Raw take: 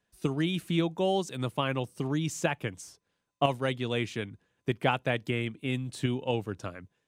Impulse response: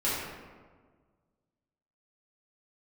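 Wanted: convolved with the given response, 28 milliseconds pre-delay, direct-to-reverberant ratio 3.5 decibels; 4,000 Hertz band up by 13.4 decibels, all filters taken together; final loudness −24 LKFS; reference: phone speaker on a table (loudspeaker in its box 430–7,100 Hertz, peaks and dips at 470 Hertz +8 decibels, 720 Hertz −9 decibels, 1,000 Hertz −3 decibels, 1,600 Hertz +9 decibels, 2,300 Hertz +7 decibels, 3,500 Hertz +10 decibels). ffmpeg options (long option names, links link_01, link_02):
-filter_complex "[0:a]equalizer=frequency=4000:width_type=o:gain=7.5,asplit=2[link_01][link_02];[1:a]atrim=start_sample=2205,adelay=28[link_03];[link_02][link_03]afir=irnorm=-1:irlink=0,volume=-13.5dB[link_04];[link_01][link_04]amix=inputs=2:normalize=0,highpass=frequency=430:width=0.5412,highpass=frequency=430:width=1.3066,equalizer=frequency=470:width_type=q:width=4:gain=8,equalizer=frequency=720:width_type=q:width=4:gain=-9,equalizer=frequency=1000:width_type=q:width=4:gain=-3,equalizer=frequency=1600:width_type=q:width=4:gain=9,equalizer=frequency=2300:width_type=q:width=4:gain=7,equalizer=frequency=3500:width_type=q:width=4:gain=10,lowpass=frequency=7100:width=0.5412,lowpass=frequency=7100:width=1.3066,volume=1.5dB"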